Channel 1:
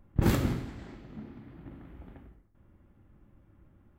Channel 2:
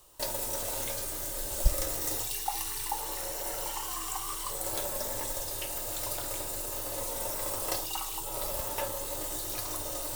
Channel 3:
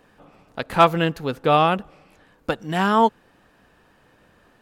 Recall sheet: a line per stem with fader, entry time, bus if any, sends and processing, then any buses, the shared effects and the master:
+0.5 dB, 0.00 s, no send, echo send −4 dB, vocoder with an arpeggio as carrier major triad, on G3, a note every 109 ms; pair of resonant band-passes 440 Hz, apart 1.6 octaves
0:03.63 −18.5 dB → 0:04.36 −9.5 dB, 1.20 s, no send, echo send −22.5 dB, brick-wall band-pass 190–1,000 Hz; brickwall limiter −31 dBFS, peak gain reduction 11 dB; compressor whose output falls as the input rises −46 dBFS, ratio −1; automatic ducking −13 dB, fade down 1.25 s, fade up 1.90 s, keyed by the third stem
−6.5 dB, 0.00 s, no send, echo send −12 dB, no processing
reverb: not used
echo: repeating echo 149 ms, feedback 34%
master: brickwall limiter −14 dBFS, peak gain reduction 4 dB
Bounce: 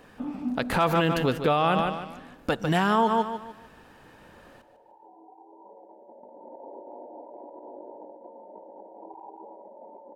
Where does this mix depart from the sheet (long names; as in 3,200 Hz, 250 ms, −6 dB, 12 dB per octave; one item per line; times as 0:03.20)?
stem 2 −18.5 dB → −8.0 dB
stem 3 −6.5 dB → +4.0 dB